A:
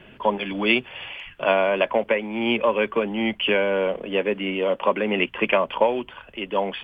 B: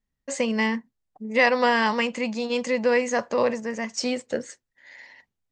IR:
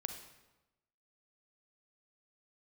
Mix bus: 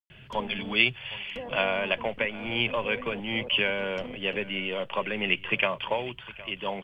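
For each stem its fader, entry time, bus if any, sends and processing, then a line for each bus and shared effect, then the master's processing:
-2.0 dB, 0.10 s, no send, echo send -19 dB, graphic EQ 125/250/500/1000/4000 Hz +10/-11/-6/-5/+4 dB
-15.5 dB, 0.00 s, no send, no echo send, level-crossing sampler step -19.5 dBFS; treble ducked by the level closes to 670 Hz, closed at -22 dBFS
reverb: off
echo: echo 0.764 s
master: dry

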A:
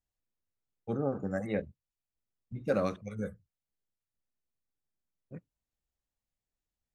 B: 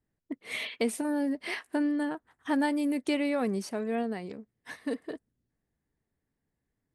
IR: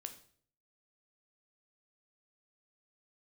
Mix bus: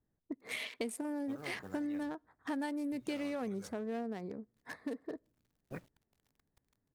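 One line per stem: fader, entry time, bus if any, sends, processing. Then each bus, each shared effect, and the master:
-1.5 dB, 0.40 s, no send, high shelf 7400 Hz -4.5 dB; companded quantiser 8-bit; spectral compressor 2:1; auto duck -11 dB, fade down 1.85 s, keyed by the second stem
-0.5 dB, 0.00 s, send -22.5 dB, Wiener smoothing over 15 samples; high shelf 5300 Hz +11.5 dB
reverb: on, RT60 0.55 s, pre-delay 10 ms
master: high shelf 4500 Hz -4.5 dB; compressor 3:1, threshold -38 dBFS, peak gain reduction 11 dB

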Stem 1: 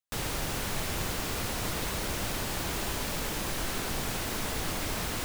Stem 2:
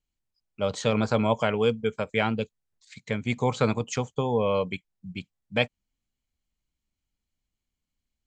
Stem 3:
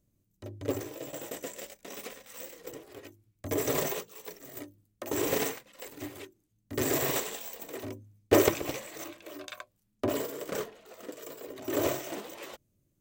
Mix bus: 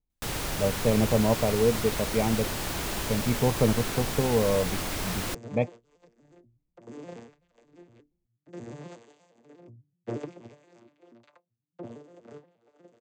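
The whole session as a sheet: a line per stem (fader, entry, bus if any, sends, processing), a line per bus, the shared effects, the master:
+1.0 dB, 0.10 s, no send, dry
+2.0 dB, 0.00 s, no send, running mean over 29 samples
-11.0 dB, 1.75 s, no send, arpeggiated vocoder major triad, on A#2, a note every 0.12 s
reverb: off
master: dry

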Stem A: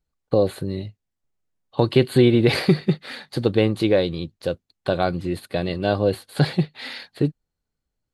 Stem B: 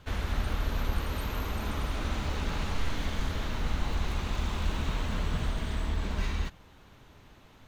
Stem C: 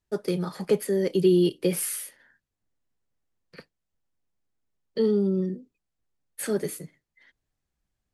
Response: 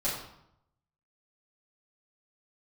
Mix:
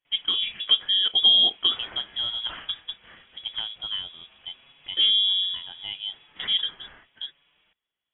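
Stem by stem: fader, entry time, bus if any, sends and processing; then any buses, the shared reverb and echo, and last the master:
-13.5 dB, 0.00 s, no send, dry
-6.5 dB, 0.05 s, send -11.5 dB, compressor 2.5:1, threshold -43 dBFS, peak gain reduction 14 dB; endless flanger 6.9 ms -0.82 Hz
+2.0 dB, 0.00 s, no send, dry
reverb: on, RT60 0.75 s, pre-delay 3 ms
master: steep high-pass 180 Hz 36 dB/oct; inverted band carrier 3600 Hz

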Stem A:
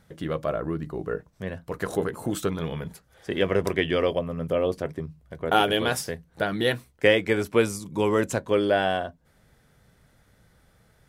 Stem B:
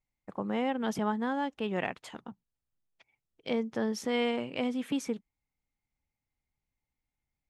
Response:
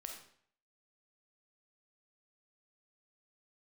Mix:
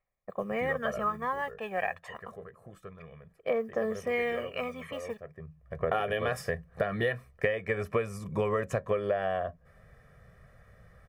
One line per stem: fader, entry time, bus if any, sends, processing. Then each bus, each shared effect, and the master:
+0.5 dB, 0.40 s, no send, bell 5200 Hz +4.5 dB 0.24 oct; auto duck -21 dB, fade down 1.55 s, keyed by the second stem
+0.5 dB, 0.00 s, no send, tone controls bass -13 dB, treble -1 dB; modulation noise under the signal 25 dB; phaser 0.28 Hz, delay 1.3 ms, feedback 60%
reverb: off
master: resonant high shelf 2800 Hz -11 dB, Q 1.5; comb 1.7 ms, depth 77%; compressor 16:1, threshold -25 dBFS, peak gain reduction 16.5 dB

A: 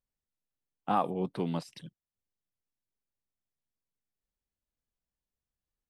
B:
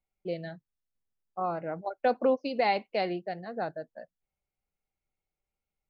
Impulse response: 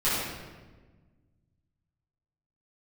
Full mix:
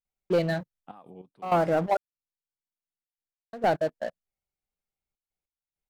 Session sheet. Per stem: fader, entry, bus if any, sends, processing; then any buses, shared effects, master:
-12.0 dB, 0.00 s, no send, dry
+1.0 dB, 0.05 s, muted 1.97–3.53, no send, sample leveller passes 3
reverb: off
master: step gate "xxxxxx.x..xxxx" 99 bpm -12 dB

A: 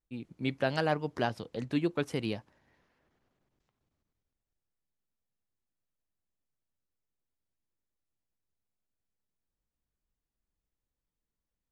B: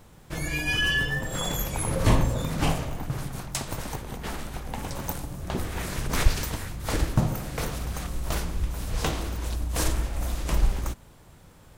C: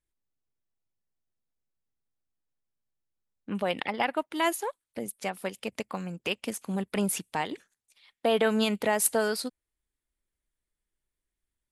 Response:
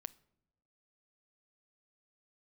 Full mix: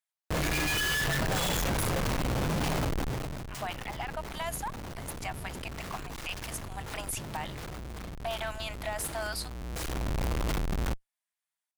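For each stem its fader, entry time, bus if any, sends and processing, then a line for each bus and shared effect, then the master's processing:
-7.0 dB, 0.45 s, bus A, no send, dry
-1.5 dB, 0.00 s, no bus, no send, Schmitt trigger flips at -36 dBFS; auto duck -11 dB, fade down 0.50 s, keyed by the third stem
-0.5 dB, 0.00 s, bus A, no send, one-sided clip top -23 dBFS
bus A: 0.0 dB, brick-wall FIR high-pass 610 Hz; limiter -25.5 dBFS, peak gain reduction 11.5 dB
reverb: off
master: dry

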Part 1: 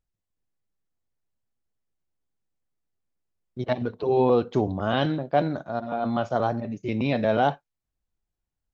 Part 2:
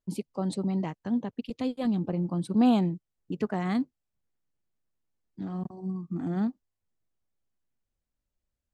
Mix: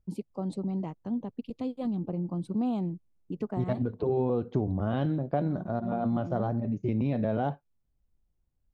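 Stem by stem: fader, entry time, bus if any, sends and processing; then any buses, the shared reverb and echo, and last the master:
-1.5 dB, 0.00 s, no send, low shelf 320 Hz +11.5 dB
-2.0 dB, 0.00 s, no send, bell 1700 Hz -8.5 dB 0.49 oct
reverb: off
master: high shelf 2100 Hz -10 dB; compressor 3:1, threshold -27 dBFS, peak gain reduction 11 dB

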